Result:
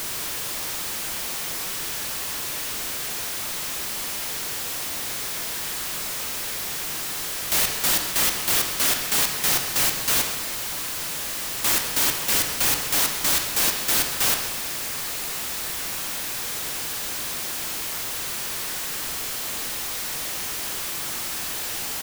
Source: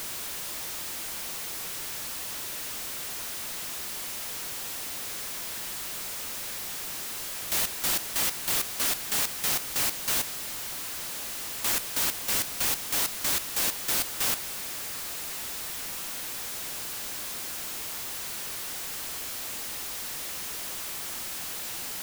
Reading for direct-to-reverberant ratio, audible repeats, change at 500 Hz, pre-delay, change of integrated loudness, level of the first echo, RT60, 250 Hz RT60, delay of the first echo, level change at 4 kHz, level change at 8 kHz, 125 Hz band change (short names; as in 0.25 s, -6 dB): 4.0 dB, 1, +7.0 dB, 24 ms, +6.0 dB, -13.5 dB, 1.2 s, 1.2 s, 0.132 s, +6.5 dB, +6.0 dB, +7.5 dB